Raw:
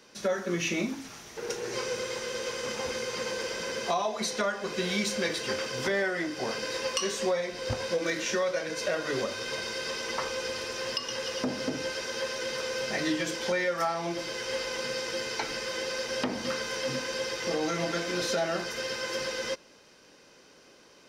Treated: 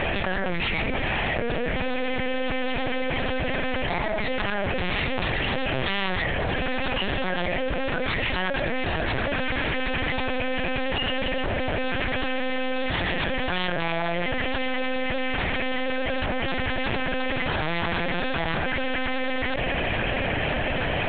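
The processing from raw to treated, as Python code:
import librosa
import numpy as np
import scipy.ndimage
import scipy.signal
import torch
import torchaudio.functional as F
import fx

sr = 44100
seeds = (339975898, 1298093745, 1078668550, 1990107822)

y = fx.fixed_phaser(x, sr, hz=1200.0, stages=6)
y = fx.cheby_harmonics(y, sr, harmonics=(2, 6, 7), levels_db=(-37, -22, -10), full_scale_db=-17.0)
y = fx.lpc_vocoder(y, sr, seeds[0], excitation='pitch_kept', order=8)
y = fx.env_flatten(y, sr, amount_pct=100)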